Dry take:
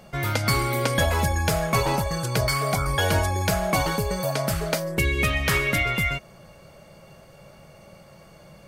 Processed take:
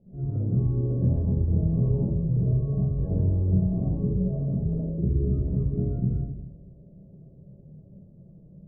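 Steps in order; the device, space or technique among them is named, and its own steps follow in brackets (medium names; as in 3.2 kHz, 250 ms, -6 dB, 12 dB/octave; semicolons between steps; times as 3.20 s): next room (low-pass 380 Hz 24 dB/octave; reverberation RT60 0.85 s, pre-delay 35 ms, DRR -7.5 dB); trim -8.5 dB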